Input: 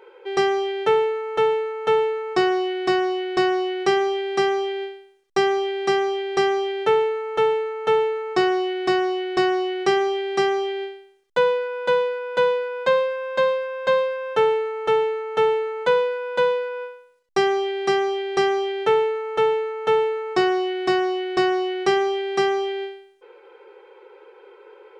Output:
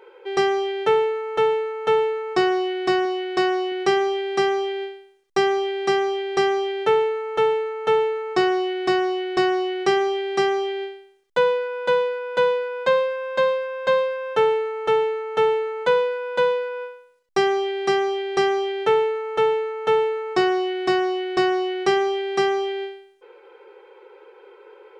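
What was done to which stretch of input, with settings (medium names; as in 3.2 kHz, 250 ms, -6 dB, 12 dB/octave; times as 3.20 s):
3.05–3.72 s: bass shelf 110 Hz -11 dB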